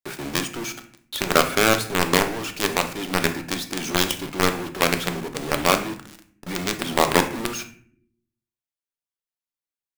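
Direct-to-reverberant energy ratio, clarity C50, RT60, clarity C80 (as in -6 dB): 6.5 dB, 11.5 dB, 0.50 s, 16.0 dB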